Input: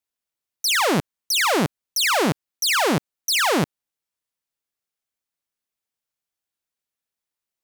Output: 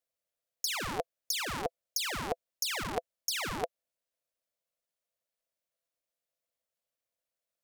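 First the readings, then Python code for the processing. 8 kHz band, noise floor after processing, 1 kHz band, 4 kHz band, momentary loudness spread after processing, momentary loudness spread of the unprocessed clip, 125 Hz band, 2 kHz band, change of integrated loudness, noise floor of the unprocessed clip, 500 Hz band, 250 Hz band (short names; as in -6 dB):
-11.5 dB, under -85 dBFS, -14.0 dB, -13.5 dB, 6 LU, 6 LU, -17.0 dB, -15.0 dB, -14.0 dB, under -85 dBFS, -14.0 dB, -19.5 dB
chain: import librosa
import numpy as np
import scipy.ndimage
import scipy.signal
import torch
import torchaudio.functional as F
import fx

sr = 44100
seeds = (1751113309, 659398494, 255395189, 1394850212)

y = fx.over_compress(x, sr, threshold_db=-23.0, ratio=-0.5)
y = fx.low_shelf_res(y, sr, hz=130.0, db=13.0, q=1.5)
y = y * np.sin(2.0 * np.pi * 590.0 * np.arange(len(y)) / sr)
y = y * librosa.db_to_amplitude(-6.5)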